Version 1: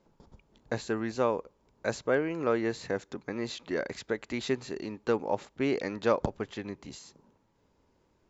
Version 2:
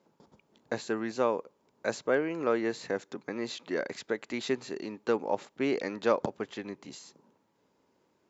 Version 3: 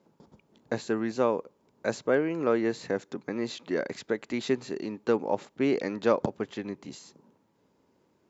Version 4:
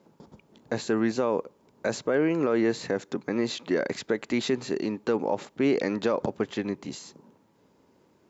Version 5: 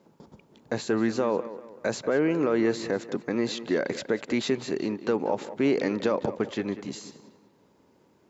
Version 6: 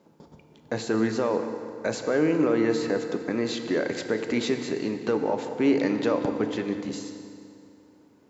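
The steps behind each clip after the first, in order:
high-pass filter 180 Hz 12 dB per octave
low-shelf EQ 350 Hz +7 dB
brickwall limiter −20.5 dBFS, peak gain reduction 10 dB; level +5.5 dB
tape delay 189 ms, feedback 44%, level −12 dB, low-pass 3,200 Hz
feedback delay network reverb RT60 2.6 s, high-frequency decay 0.75×, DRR 6.5 dB

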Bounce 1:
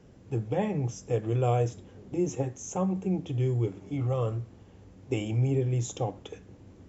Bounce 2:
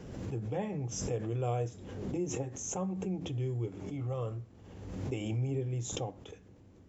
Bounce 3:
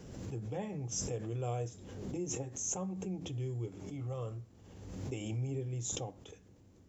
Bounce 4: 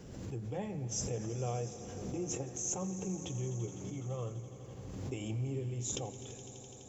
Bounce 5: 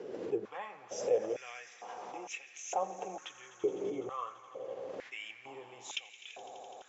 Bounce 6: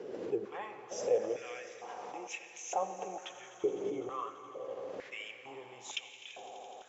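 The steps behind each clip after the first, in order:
background raised ahead of every attack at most 41 dB per second; level −7.5 dB
bass and treble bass +1 dB, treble +8 dB; level −4.5 dB
echo that builds up and dies away 84 ms, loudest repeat 5, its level −18 dB
low-pass filter 3,200 Hz 12 dB per octave; high-pass on a step sequencer 2.2 Hz 420–2,400 Hz; level +4 dB
convolution reverb RT60 3.2 s, pre-delay 49 ms, DRR 12 dB

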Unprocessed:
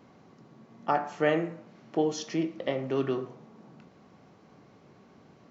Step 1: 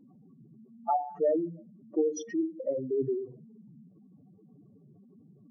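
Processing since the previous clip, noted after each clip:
expanding power law on the bin magnitudes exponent 4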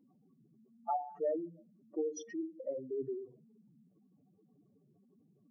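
low-shelf EQ 230 Hz −10 dB
level −6 dB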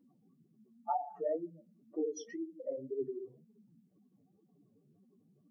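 flanger 2 Hz, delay 9.5 ms, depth 9.3 ms, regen +25%
level +3.5 dB

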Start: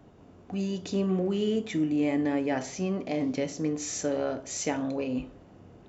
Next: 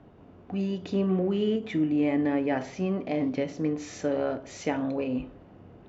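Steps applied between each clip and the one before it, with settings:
low-pass filter 3,200 Hz 12 dB per octave
every ending faded ahead of time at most 200 dB per second
level +1.5 dB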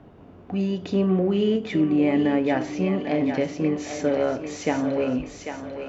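feedback echo with a high-pass in the loop 795 ms, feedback 51%, high-pass 520 Hz, level −6 dB
level +4.5 dB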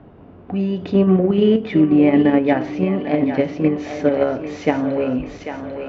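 in parallel at −2.5 dB: output level in coarse steps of 21 dB
on the sum: high-frequency loss of the air 210 metres
level +3.5 dB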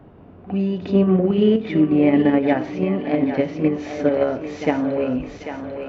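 backwards echo 56 ms −13 dB
level −2 dB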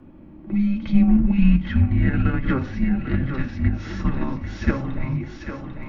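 notch comb filter 280 Hz
frequency shifter −400 Hz
level +1.5 dB

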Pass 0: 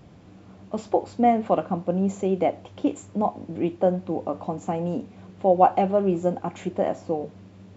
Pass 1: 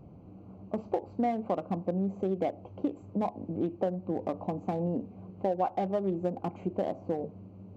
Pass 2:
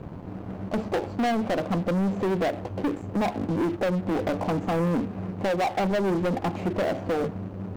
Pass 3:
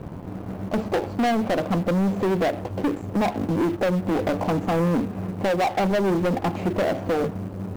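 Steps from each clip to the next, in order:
adaptive Wiener filter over 25 samples; downward compressor 4 to 1, threshold −26 dBFS, peak gain reduction 12.5 dB; level −1 dB
leveller curve on the samples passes 5; level −4.5 dB
floating-point word with a short mantissa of 4 bits; level +3 dB

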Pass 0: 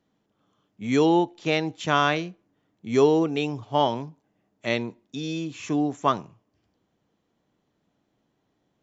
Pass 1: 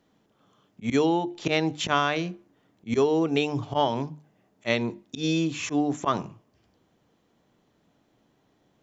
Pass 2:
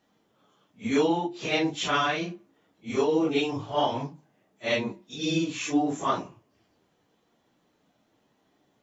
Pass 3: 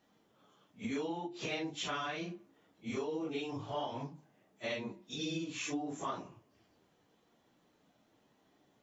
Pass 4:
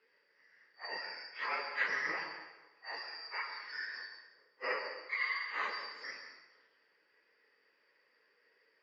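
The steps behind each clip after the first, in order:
volume swells 105 ms; downward compressor 12 to 1, threshold −25 dBFS, peak gain reduction 12 dB; mains-hum notches 50/100/150/200/250/300/350 Hz; level +6.5 dB
random phases in long frames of 100 ms; low-shelf EQ 190 Hz −8 dB
downward compressor 4 to 1, threshold −35 dBFS, peak gain reduction 14 dB; level −2 dB
band-splitting scrambler in four parts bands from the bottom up 2341; loudspeaker in its box 410–3,000 Hz, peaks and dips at 460 Hz +8 dB, 740 Hz −7 dB, 1,900 Hz +8 dB; dense smooth reverb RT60 1.1 s, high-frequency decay 0.8×, pre-delay 90 ms, DRR 6 dB; level +4.5 dB

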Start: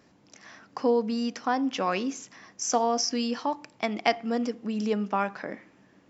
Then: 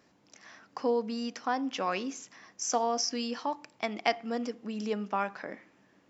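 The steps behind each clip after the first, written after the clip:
low-shelf EQ 290 Hz −5.5 dB
level −3 dB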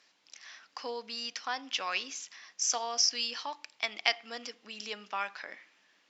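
resonant band-pass 3,800 Hz, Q 1.1
level +8 dB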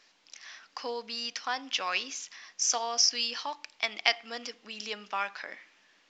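level +2.5 dB
mu-law 128 kbit/s 16,000 Hz

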